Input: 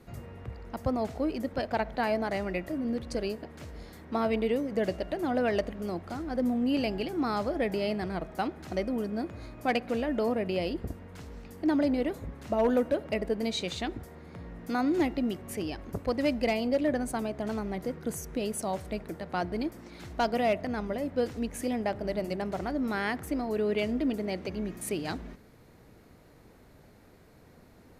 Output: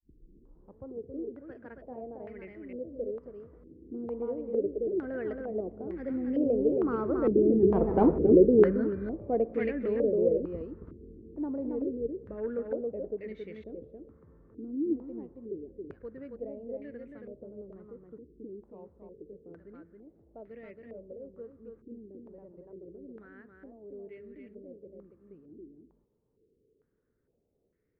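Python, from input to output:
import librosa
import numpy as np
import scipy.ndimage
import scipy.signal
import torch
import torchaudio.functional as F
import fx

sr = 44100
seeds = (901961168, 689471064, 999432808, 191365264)

p1 = fx.tape_start_head(x, sr, length_s=0.9)
p2 = fx.doppler_pass(p1, sr, speed_mps=17, closest_m=2.1, pass_at_s=8.02)
p3 = fx.rider(p2, sr, range_db=4, speed_s=2.0)
p4 = p2 + (p3 * 10.0 ** (3.0 / 20.0))
p5 = 10.0 ** (-27.0 / 20.0) * np.tanh(p4 / 10.0 ** (-27.0 / 20.0))
p6 = fx.low_shelf_res(p5, sr, hz=580.0, db=7.5, q=3.0)
p7 = p6 + 10.0 ** (-4.0 / 20.0) * np.pad(p6, (int(274 * sr / 1000.0), 0))[:len(p6)]
y = fx.filter_held_lowpass(p7, sr, hz=2.2, low_hz=330.0, high_hz=2000.0)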